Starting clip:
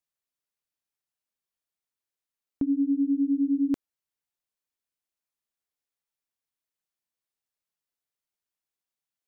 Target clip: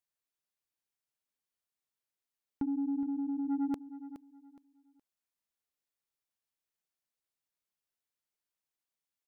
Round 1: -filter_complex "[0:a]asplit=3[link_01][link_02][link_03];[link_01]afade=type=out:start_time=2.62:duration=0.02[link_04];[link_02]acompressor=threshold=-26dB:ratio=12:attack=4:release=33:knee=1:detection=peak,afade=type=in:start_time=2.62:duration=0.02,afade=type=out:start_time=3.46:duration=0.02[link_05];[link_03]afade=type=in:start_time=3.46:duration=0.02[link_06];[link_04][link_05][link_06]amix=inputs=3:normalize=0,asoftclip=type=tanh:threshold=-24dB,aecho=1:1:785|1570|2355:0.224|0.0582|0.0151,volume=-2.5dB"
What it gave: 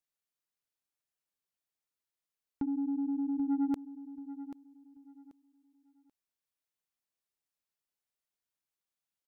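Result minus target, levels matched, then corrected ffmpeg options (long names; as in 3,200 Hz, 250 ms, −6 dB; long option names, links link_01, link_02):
echo 367 ms late
-filter_complex "[0:a]asplit=3[link_01][link_02][link_03];[link_01]afade=type=out:start_time=2.62:duration=0.02[link_04];[link_02]acompressor=threshold=-26dB:ratio=12:attack=4:release=33:knee=1:detection=peak,afade=type=in:start_time=2.62:duration=0.02,afade=type=out:start_time=3.46:duration=0.02[link_05];[link_03]afade=type=in:start_time=3.46:duration=0.02[link_06];[link_04][link_05][link_06]amix=inputs=3:normalize=0,asoftclip=type=tanh:threshold=-24dB,aecho=1:1:418|836|1254:0.224|0.0582|0.0151,volume=-2.5dB"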